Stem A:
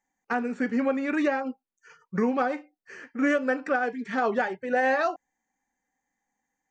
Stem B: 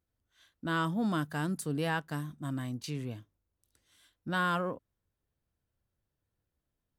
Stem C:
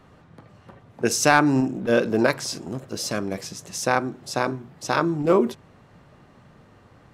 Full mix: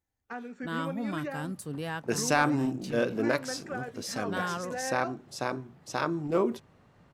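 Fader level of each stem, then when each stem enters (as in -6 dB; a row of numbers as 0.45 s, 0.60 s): -12.0 dB, -3.5 dB, -8.0 dB; 0.00 s, 0.00 s, 1.05 s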